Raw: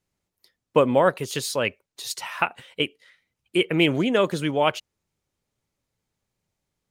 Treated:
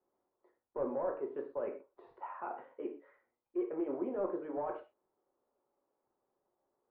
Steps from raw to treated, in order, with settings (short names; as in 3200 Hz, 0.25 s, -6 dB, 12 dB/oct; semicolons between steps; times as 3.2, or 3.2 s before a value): limiter -13 dBFS, peak gain reduction 8 dB; HPF 310 Hz 24 dB/oct; de-esser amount 85%; hard clip -20.5 dBFS, distortion -13 dB; reverse; compressor 6:1, threshold -40 dBFS, peak gain reduction 16 dB; reverse; crackle 120/s -70 dBFS; LPF 1100 Hz 24 dB/oct; non-linear reverb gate 0.15 s falling, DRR 1 dB; gain +3 dB